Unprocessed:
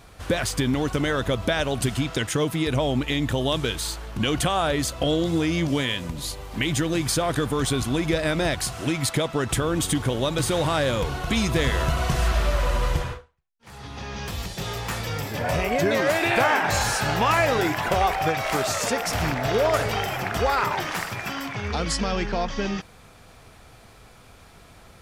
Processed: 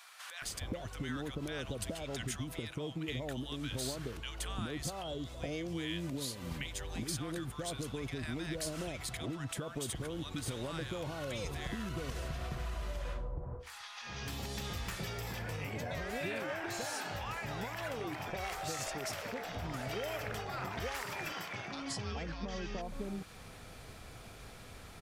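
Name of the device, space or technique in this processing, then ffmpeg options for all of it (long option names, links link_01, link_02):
serial compression, leveller first: -filter_complex "[0:a]asettb=1/sr,asplit=3[link_01][link_02][link_03];[link_01]atrim=end=20.904[link_04];[link_02]atrim=start=20.9:end=21.31,asetpts=PTS-STARTPTS,afade=type=in:duration=0.004:curve=qsin,afade=type=out:start_time=0.406:duration=0.004:curve=qsin,highpass=frequency=170:poles=1[link_05];[link_03]atrim=start=21.306[link_06];[link_04][link_05]acrossfade=duration=0.004:curve1=hsin:curve2=qsin[link_07];[link_07][link_06]acrossfade=duration=0.004:curve1=qsin:curve2=hsin,acompressor=threshold=-24dB:ratio=2,acompressor=threshold=-36dB:ratio=5,acrossover=split=950[link_08][link_09];[link_08]adelay=420[link_10];[link_10][link_09]amix=inputs=2:normalize=0,volume=-1dB"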